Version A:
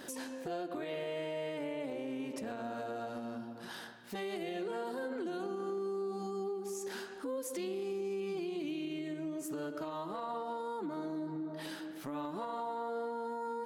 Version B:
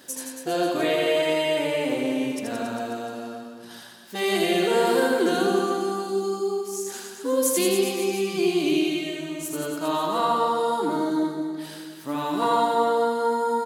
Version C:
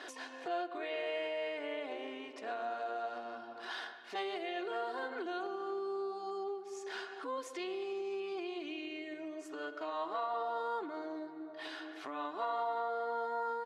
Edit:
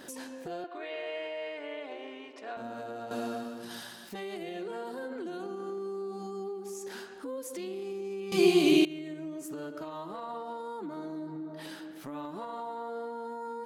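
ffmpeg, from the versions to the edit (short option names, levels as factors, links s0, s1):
-filter_complex "[1:a]asplit=2[s0][s1];[0:a]asplit=4[s2][s3][s4][s5];[s2]atrim=end=0.642[s6];[2:a]atrim=start=0.638:end=2.572[s7];[s3]atrim=start=2.568:end=3.112[s8];[s0]atrim=start=3.108:end=4.092[s9];[s4]atrim=start=4.088:end=8.322[s10];[s1]atrim=start=8.318:end=8.852[s11];[s5]atrim=start=8.848[s12];[s6][s7]acrossfade=d=0.004:c1=hsin:c2=hsin[s13];[s13][s8]acrossfade=d=0.004:c1=hsin:c2=hsin[s14];[s14][s9]acrossfade=d=0.004:c1=hsin:c2=hsin[s15];[s15][s10]acrossfade=d=0.004:c1=hsin:c2=hsin[s16];[s16][s11]acrossfade=d=0.004:c1=hsin:c2=hsin[s17];[s17][s12]acrossfade=d=0.004:c1=hsin:c2=hsin"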